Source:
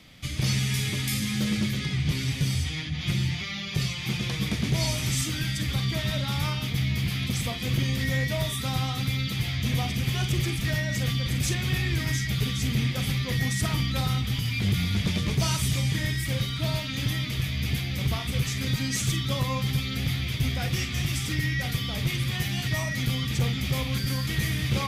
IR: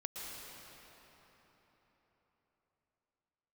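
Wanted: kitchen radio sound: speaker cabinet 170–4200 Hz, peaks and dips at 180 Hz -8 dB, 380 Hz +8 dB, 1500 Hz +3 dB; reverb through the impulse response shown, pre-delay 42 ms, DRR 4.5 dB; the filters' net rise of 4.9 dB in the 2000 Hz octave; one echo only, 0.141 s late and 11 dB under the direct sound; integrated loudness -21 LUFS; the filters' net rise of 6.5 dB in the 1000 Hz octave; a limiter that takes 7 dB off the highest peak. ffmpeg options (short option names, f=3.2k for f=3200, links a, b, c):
-filter_complex "[0:a]equalizer=f=1k:t=o:g=6.5,equalizer=f=2k:t=o:g=3.5,alimiter=limit=-21.5dB:level=0:latency=1,aecho=1:1:141:0.282,asplit=2[a][b];[1:a]atrim=start_sample=2205,adelay=42[c];[b][c]afir=irnorm=-1:irlink=0,volume=-4.5dB[d];[a][d]amix=inputs=2:normalize=0,highpass=170,equalizer=f=180:t=q:w=4:g=-8,equalizer=f=380:t=q:w=4:g=8,equalizer=f=1.5k:t=q:w=4:g=3,lowpass=f=4.2k:w=0.5412,lowpass=f=4.2k:w=1.3066,volume=9dB"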